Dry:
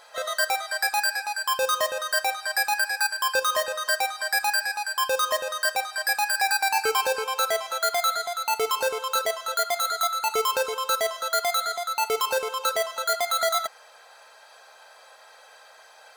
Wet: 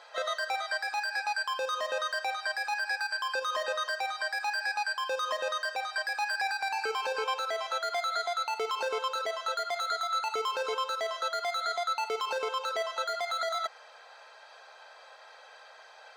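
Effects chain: limiter -20 dBFS, peak gain reduction 9.5 dB; three-band isolator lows -22 dB, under 240 Hz, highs -20 dB, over 6000 Hz; gain -1 dB

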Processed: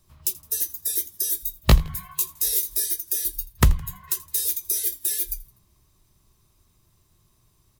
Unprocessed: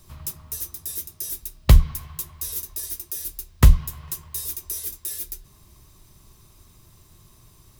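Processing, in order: spectral noise reduction 18 dB; compressor 2.5:1, threshold -27 dBFS, peak gain reduction 14 dB; 1.39–2.84 doubler 19 ms -3.5 dB; on a send: frequency-shifting echo 82 ms, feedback 43%, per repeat -74 Hz, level -21 dB; on the sum: gain +7.5 dB

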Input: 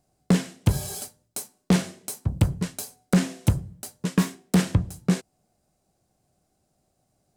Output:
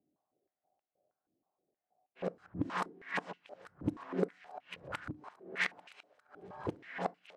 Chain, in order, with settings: whole clip reversed; low-pass opened by the level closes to 700 Hz, open at -15.5 dBFS; tilt shelf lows -5 dB, about 660 Hz; on a send: thinning echo 0.843 s, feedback 65%, high-pass 640 Hz, level -17 dB; on the sum: FDN reverb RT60 0.37 s, low-frequency decay 1.6×, high-frequency decay 0.6×, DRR 19 dB; stepped band-pass 6.3 Hz 290–2700 Hz; gain +3 dB

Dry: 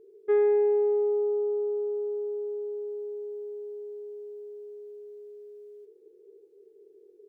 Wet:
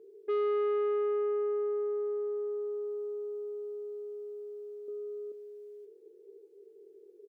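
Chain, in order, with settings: 4.88–5.32 low shelf 450 Hz +11 dB; soft clip -26.5 dBFS, distortion -10 dB; HPF 200 Hz 12 dB/oct; doubler 20 ms -13.5 dB

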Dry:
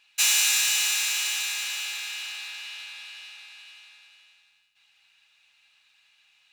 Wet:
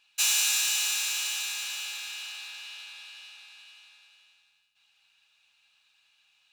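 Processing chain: bell 2000 Hz -8 dB 0.32 oct; gain -3 dB

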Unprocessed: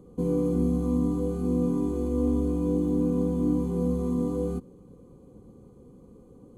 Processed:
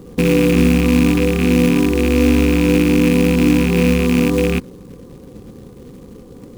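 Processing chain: rattling part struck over -28 dBFS, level -24 dBFS; in parallel at -2.5 dB: limiter -21 dBFS, peak gain reduction 7.5 dB; on the sum: short-mantissa float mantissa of 2-bit; gain +8.5 dB

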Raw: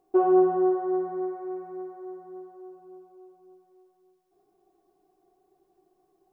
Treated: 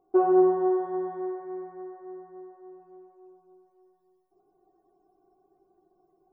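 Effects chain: 1.35–2.8 air absorption 170 m; multi-head echo 89 ms, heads all three, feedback 55%, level -13 dB; loudest bins only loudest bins 64

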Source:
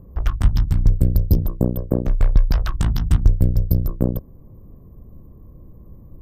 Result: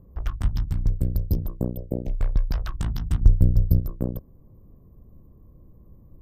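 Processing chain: 1.72–2.14 Chebyshev band-stop 720–2400 Hz, order 2; 3.21–3.8 low shelf 330 Hz +7 dB; gain -7.5 dB

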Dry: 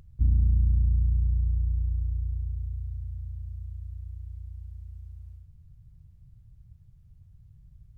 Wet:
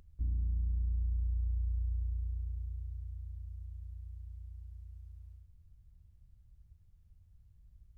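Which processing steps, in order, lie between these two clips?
bell 130 Hz -14 dB 0.68 oct; limiter -23 dBFS, peak gain reduction 6 dB; gain -5 dB

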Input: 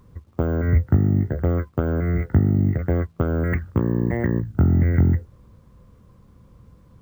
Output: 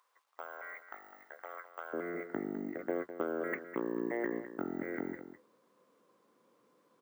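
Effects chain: HPF 790 Hz 24 dB/oct, from 1.93 s 310 Hz; echo 0.206 s -11.5 dB; gain -8 dB

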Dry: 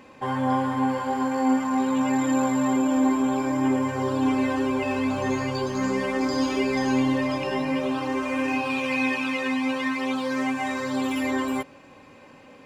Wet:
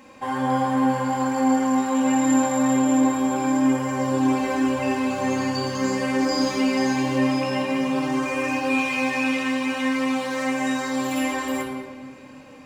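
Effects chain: high shelf 3400 Hz +8 dB; notches 50/100 Hz; shoebox room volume 1800 m³, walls mixed, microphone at 2.2 m; gain -3 dB

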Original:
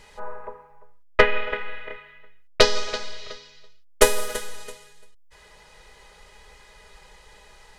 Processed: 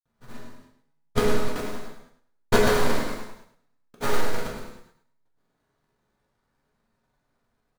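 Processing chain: delta modulation 64 kbps, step -26.5 dBFS; gate -25 dBFS, range -44 dB; graphic EQ 125/250/500/1000/2000/4000/8000 Hz +10/+9/-9/-5/-11/+7/-3 dB; sample-rate reducer 2800 Hz, jitter 20%; grains 0.1 s, grains 20/s; on a send: feedback echo 0.105 s, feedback 20%, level -9 dB; on the sum: non-linear reverb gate 0.35 s falling, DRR -3 dB

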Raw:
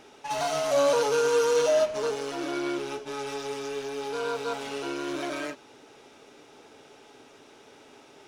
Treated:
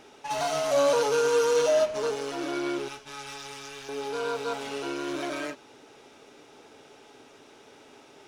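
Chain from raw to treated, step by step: 2.88–3.89 bell 390 Hz -14.5 dB 1.7 oct

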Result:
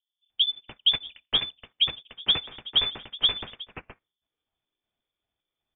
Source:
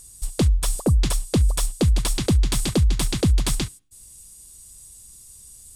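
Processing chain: trilling pitch shifter +2 st, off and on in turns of 0.189 s; HPF 140 Hz 12 dB/oct; low shelf 310 Hz -9.5 dB; in parallel at +2 dB: limiter -24 dBFS, peak gain reduction 11 dB; on the sum: one-sided clip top -17.5 dBFS; frequency shift -63 Hz; bands offset in time lows, highs 0.3 s, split 610 Hz; on a send at -21.5 dB: reverb RT60 0.25 s, pre-delay 3 ms; on the sum: inverted band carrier 3500 Hz; upward expander 2.5:1, over -39 dBFS; gain +4 dB

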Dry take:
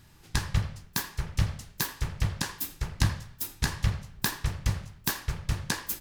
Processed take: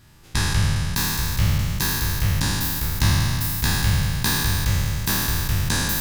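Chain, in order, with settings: spectral trails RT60 2.62 s; gain +1.5 dB

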